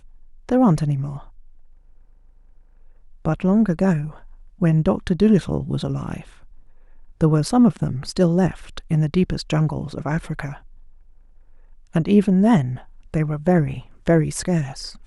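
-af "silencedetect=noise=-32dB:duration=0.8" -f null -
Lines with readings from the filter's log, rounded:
silence_start: 1.20
silence_end: 3.25 | silence_duration: 2.05
silence_start: 6.21
silence_end: 7.21 | silence_duration: 1.00
silence_start: 10.56
silence_end: 11.95 | silence_duration: 1.38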